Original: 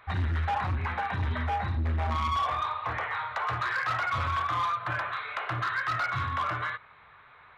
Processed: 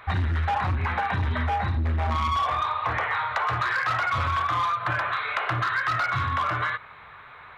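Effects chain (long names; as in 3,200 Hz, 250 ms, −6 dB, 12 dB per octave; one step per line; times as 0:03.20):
downward compressor, threshold −31 dBFS, peak gain reduction 5.5 dB
level +8.5 dB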